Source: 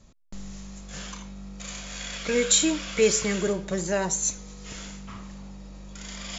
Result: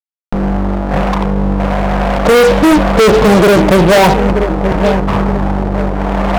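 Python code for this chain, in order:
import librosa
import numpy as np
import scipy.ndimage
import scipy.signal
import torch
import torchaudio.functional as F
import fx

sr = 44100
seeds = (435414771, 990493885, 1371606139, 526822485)

y = fx.ladder_lowpass(x, sr, hz=930.0, resonance_pct=55)
y = fx.echo_wet_lowpass(y, sr, ms=925, feedback_pct=35, hz=630.0, wet_db=-16.0)
y = fx.fuzz(y, sr, gain_db=47.0, gate_db=-53.0)
y = y * librosa.db_to_amplitude(8.0)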